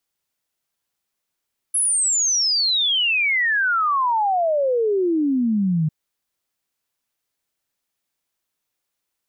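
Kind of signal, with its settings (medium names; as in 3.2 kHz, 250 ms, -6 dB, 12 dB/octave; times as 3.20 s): log sweep 11 kHz -> 150 Hz 4.15 s -16.5 dBFS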